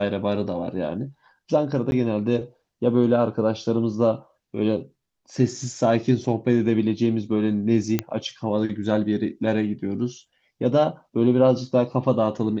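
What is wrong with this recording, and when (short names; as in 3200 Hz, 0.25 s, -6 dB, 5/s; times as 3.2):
1.91–1.92 gap 11 ms
7.99 pop -8 dBFS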